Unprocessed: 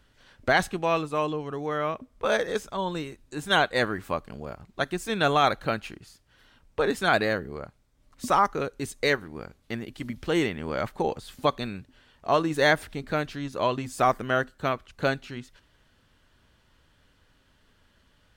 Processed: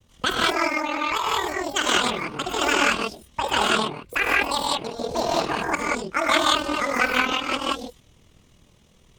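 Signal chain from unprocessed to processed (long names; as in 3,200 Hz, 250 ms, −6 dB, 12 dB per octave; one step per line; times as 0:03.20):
low-shelf EQ 220 Hz +5 dB
reverb whose tail is shaped and stops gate 420 ms rising, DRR −4.5 dB
granular cloud 78 ms, spray 17 ms, pitch spread up and down by 0 semitones
wrong playback speed 7.5 ips tape played at 15 ips
highs frequency-modulated by the lows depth 0.12 ms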